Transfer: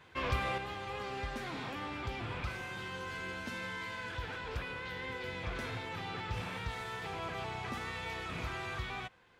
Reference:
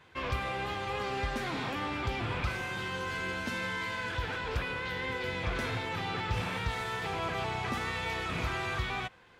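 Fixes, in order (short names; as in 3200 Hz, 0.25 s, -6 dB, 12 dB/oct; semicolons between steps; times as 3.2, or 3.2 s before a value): gain correction +6 dB, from 0.58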